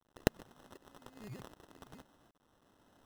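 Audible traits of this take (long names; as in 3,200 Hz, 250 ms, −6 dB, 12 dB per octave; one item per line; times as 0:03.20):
aliases and images of a low sample rate 2,300 Hz, jitter 0%
tremolo saw up 1.3 Hz, depth 70%
a quantiser's noise floor 12 bits, dither none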